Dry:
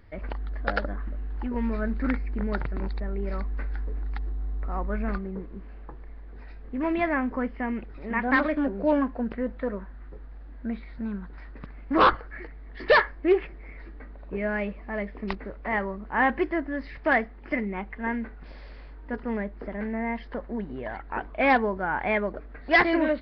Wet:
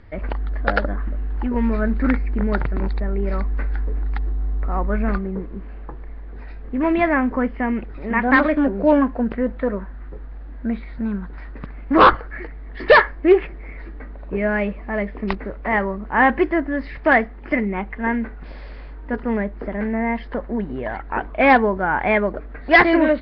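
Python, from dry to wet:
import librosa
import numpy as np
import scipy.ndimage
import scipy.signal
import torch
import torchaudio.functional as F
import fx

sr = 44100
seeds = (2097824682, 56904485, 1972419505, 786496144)

y = fx.air_absorb(x, sr, metres=110.0)
y = y * librosa.db_to_amplitude(8.0)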